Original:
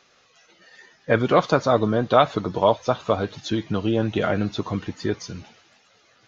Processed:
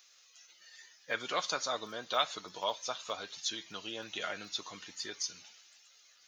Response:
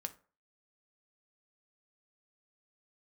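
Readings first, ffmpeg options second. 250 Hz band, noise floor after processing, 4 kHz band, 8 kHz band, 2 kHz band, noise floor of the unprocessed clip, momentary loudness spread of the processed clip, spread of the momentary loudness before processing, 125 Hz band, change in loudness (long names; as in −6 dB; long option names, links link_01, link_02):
−26.0 dB, −63 dBFS, −2.0 dB, can't be measured, −9.5 dB, −60 dBFS, 21 LU, 10 LU, −32.0 dB, −14.5 dB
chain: -filter_complex "[0:a]aderivative,asplit=2[link_01][link_02];[1:a]atrim=start_sample=2205,highshelf=frequency=4300:gain=11.5[link_03];[link_02][link_03]afir=irnorm=-1:irlink=0,volume=-7dB[link_04];[link_01][link_04]amix=inputs=2:normalize=0"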